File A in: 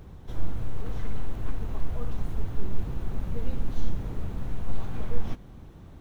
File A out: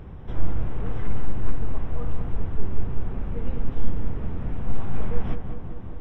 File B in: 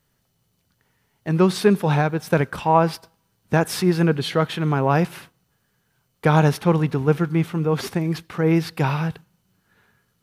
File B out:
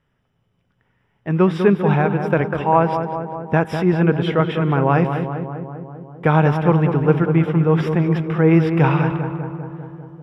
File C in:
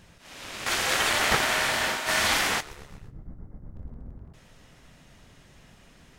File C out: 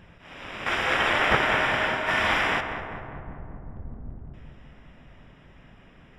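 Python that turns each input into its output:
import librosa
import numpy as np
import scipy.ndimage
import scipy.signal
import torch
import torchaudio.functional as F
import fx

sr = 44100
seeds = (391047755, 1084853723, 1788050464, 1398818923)

y = scipy.signal.savgol_filter(x, 25, 4, mode='constant')
y = fx.rider(y, sr, range_db=4, speed_s=2.0)
y = fx.echo_filtered(y, sr, ms=198, feedback_pct=70, hz=1800.0, wet_db=-7.0)
y = y * 10.0 ** (2.5 / 20.0)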